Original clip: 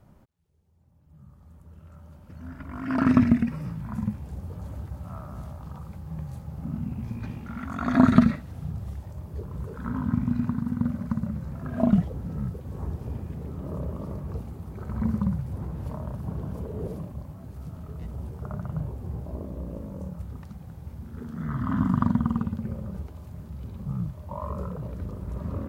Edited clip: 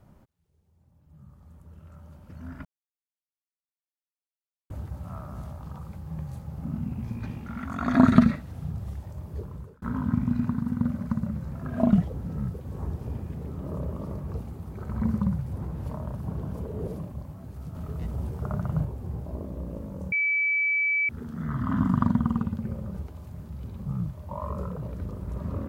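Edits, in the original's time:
0:02.65–0:04.70: silence
0:09.40–0:09.82: fade out
0:17.75–0:18.85: clip gain +4 dB
0:20.12–0:21.09: beep over 2,300 Hz −21.5 dBFS

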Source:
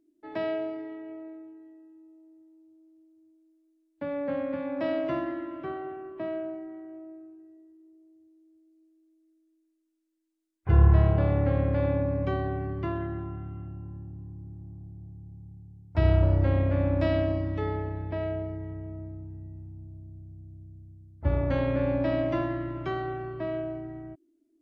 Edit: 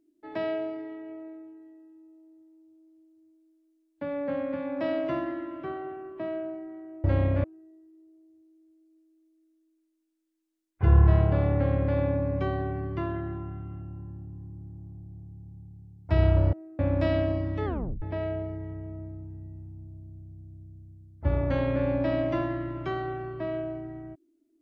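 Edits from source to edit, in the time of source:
0:07.04–0:07.30: swap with 0:16.39–0:16.79
0:17.65: tape stop 0.37 s

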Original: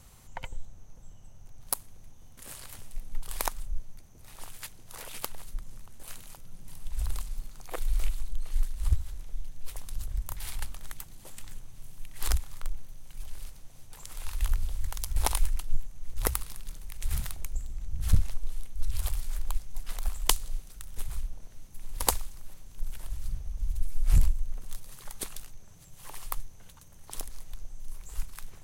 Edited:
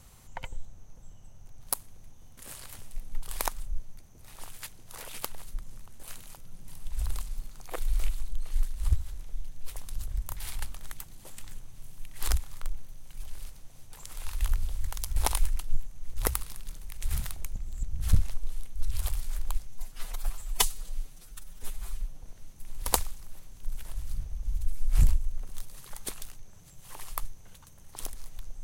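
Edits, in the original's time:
0:17.56–0:17.83: reverse
0:19.67–0:21.38: time-stretch 1.5×

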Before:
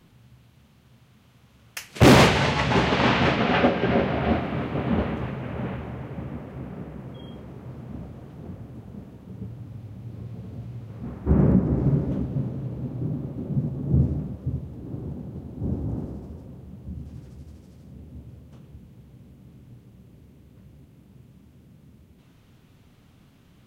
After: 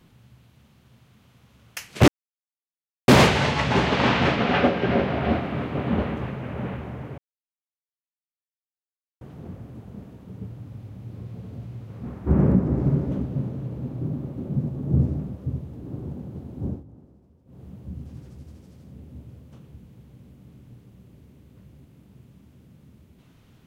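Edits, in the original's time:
0:02.08: splice in silence 1.00 s
0:06.18–0:08.21: silence
0:15.65–0:16.64: duck −18.5 dB, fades 0.19 s

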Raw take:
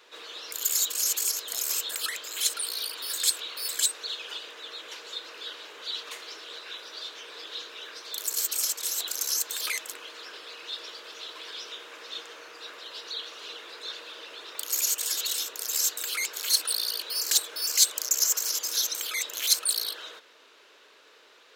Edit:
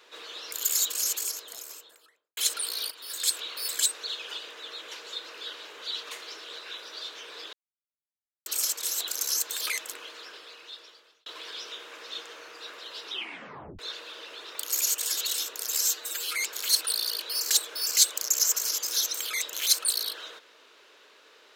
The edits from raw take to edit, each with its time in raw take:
0:00.86–0:02.37: fade out and dull
0:02.91–0:03.40: fade in, from −12 dB
0:07.53–0:08.46: silence
0:10.02–0:11.26: fade out
0:13.03: tape stop 0.76 s
0:15.81–0:16.20: time-stretch 1.5×

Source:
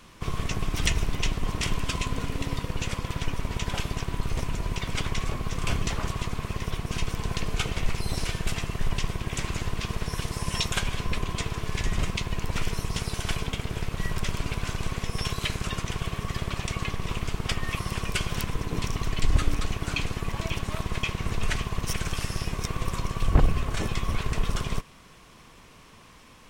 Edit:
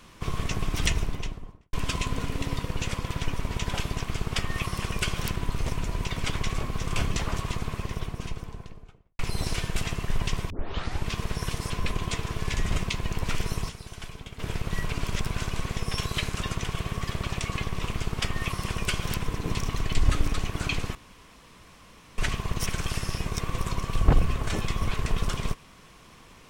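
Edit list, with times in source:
0:00.81–0:01.73: fade out and dull
0:06.26–0:07.90: fade out and dull
0:09.21: tape start 0.57 s
0:10.41–0:10.97: remove
0:12.96–0:13.66: clip gain −11 dB
0:14.17–0:14.54: reverse
0:17.20–0:18.49: duplicate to 0:04.07
0:20.22–0:21.45: fill with room tone

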